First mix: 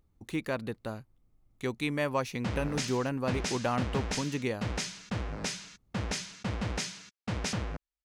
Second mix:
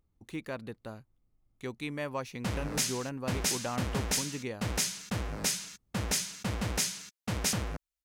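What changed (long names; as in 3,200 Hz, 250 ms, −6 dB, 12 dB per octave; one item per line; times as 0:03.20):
speech −5.5 dB
background: remove high-frequency loss of the air 98 metres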